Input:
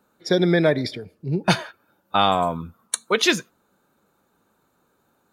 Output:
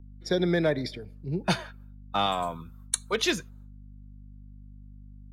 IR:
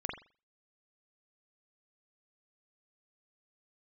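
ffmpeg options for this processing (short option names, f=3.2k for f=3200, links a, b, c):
-filter_complex "[0:a]agate=range=-33dB:threshold=-51dB:ratio=3:detection=peak,asettb=1/sr,asplit=3[a][b][c];[a]atrim=end=2.264[d];[b]atrim=start=2.26:end=3.13,asetpts=PTS-STARTPTS,afade=t=in:d=0.004:c=qsin,afade=t=out:st=0.866:d=0.004:c=qsin,tiltshelf=f=1.2k:g=-4.5[e];[c]atrim=start=3.126[f];[d][e]acrossfade=d=0.004:c1=hsin:c2=qsin[g];[g][f]acrossfade=d=0.004:c1=qsin:c2=hsin,aeval=exprs='val(0)+0.0112*(sin(2*PI*50*n/s)+sin(2*PI*2*50*n/s)/2+sin(2*PI*3*50*n/s)/3+sin(2*PI*4*50*n/s)/4+sin(2*PI*5*50*n/s)/5)':c=same,acrossover=split=300|1100|2200[h][i][j][k];[j]asoftclip=type=hard:threshold=-27dB[l];[h][i][l][k]amix=inputs=4:normalize=0,volume=-6.5dB"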